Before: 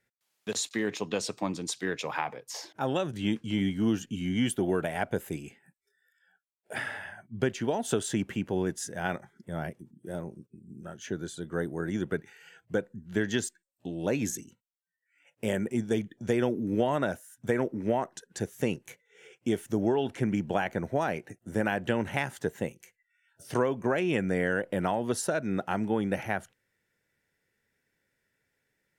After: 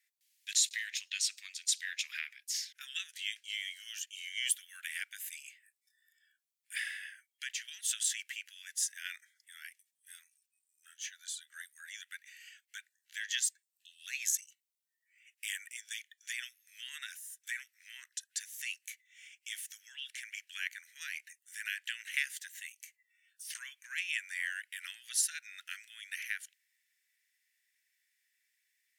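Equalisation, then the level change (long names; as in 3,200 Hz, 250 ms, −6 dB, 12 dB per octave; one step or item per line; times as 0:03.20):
Butterworth high-pass 1,800 Hz 48 dB per octave
high-shelf EQ 4,200 Hz +6 dB
0.0 dB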